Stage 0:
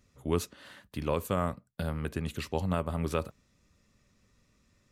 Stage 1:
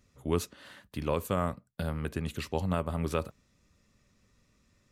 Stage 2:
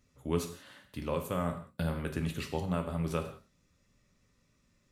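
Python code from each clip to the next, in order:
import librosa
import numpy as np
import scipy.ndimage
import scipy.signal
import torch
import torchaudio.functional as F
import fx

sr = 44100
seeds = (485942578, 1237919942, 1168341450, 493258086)

y1 = x
y2 = fx.rider(y1, sr, range_db=10, speed_s=0.5)
y2 = fx.rev_gated(y2, sr, seeds[0], gate_ms=210, shape='falling', drr_db=4.5)
y2 = y2 * 10.0 ** (-3.0 / 20.0)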